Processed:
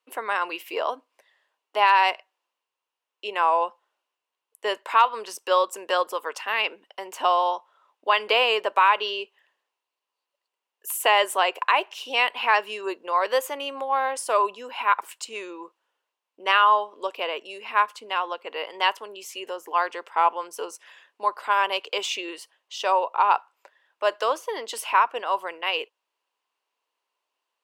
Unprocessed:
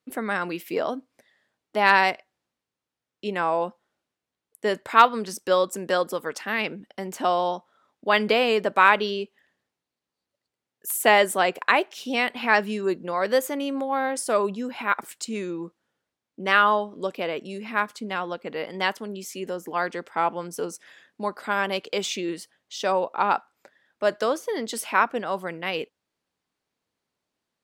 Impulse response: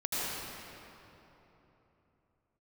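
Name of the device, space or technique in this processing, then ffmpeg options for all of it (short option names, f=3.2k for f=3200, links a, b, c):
laptop speaker: -af "highpass=f=400:w=0.5412,highpass=f=400:w=1.3066,equalizer=f=1k:t=o:w=0.43:g=11,equalizer=f=2.8k:t=o:w=0.32:g=10,alimiter=limit=-6dB:level=0:latency=1:release=171,volume=-2dB"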